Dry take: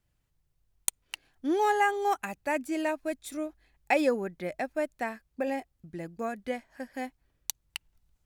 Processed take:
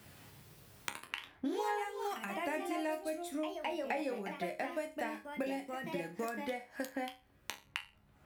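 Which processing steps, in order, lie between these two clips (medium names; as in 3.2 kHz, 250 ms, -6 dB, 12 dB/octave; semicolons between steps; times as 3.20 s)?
high-pass 44 Hz; peaking EQ 6.6 kHz -4 dB 0.5 oct; in parallel at +2.5 dB: compression, threshold -35 dBFS, peak gain reduction 14.5 dB; on the sum: chord resonator C#2 sus4, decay 0.27 s; ever faster or slower copies 167 ms, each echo +2 st, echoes 2, each echo -6 dB; three bands compressed up and down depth 100%; trim -2 dB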